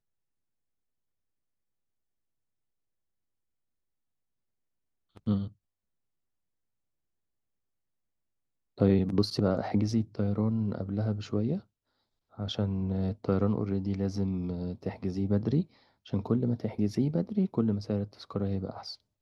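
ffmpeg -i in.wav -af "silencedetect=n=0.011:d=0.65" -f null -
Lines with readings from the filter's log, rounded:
silence_start: 0.00
silence_end: 5.17 | silence_duration: 5.17
silence_start: 5.48
silence_end: 8.78 | silence_duration: 3.30
silence_start: 11.60
silence_end: 12.39 | silence_duration: 0.79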